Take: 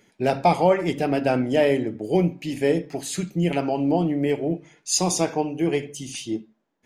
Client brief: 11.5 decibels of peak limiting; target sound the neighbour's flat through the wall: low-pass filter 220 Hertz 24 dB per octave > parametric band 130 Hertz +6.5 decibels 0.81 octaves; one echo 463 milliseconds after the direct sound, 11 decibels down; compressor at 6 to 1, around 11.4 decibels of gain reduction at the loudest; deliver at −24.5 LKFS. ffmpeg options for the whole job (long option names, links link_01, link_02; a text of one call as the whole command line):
ffmpeg -i in.wav -af "acompressor=threshold=-25dB:ratio=6,alimiter=level_in=2dB:limit=-24dB:level=0:latency=1,volume=-2dB,lowpass=frequency=220:width=0.5412,lowpass=frequency=220:width=1.3066,equalizer=frequency=130:width_type=o:width=0.81:gain=6.5,aecho=1:1:463:0.282,volume=14dB" out.wav